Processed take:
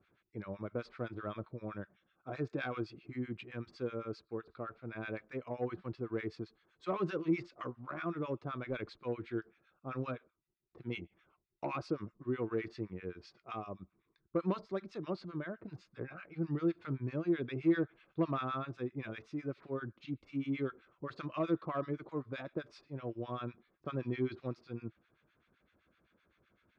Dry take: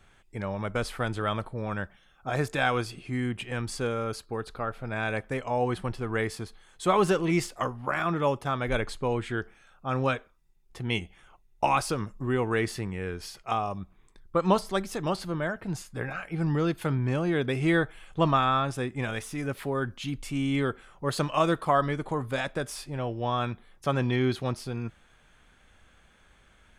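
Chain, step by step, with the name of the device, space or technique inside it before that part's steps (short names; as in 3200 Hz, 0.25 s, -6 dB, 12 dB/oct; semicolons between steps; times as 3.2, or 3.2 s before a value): guitar amplifier with harmonic tremolo (harmonic tremolo 7.8 Hz, depth 100%, crossover 1100 Hz; soft clip -18.5 dBFS, distortion -21 dB; speaker cabinet 100–4100 Hz, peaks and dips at 330 Hz +7 dB, 830 Hz -9 dB, 1800 Hz -5 dB, 3100 Hz -9 dB); gain -5.5 dB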